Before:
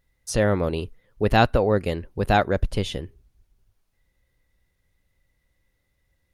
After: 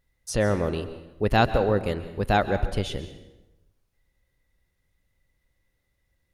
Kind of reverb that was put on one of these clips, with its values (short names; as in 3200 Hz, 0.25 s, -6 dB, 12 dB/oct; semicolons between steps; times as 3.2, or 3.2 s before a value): plate-style reverb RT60 1 s, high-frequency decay 0.75×, pre-delay 0.115 s, DRR 11.5 dB; gain -2.5 dB